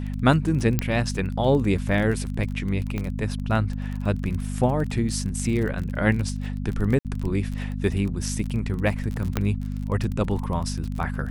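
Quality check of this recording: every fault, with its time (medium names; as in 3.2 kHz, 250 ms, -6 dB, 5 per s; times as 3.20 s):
crackle 27 per s -29 dBFS
hum 50 Hz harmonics 5 -29 dBFS
0.79 s: pop -8 dBFS
2.98 s: pop -16 dBFS
6.99–7.05 s: dropout 58 ms
9.37 s: pop -9 dBFS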